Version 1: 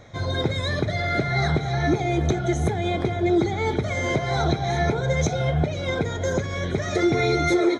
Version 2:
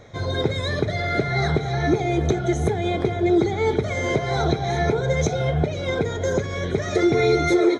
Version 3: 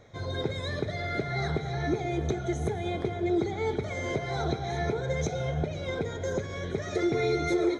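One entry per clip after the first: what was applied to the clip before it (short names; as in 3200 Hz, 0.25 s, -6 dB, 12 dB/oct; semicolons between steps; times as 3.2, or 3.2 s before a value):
bell 430 Hz +6 dB 0.42 oct
reverb RT60 1.2 s, pre-delay 92 ms, DRR 14 dB; gain -8.5 dB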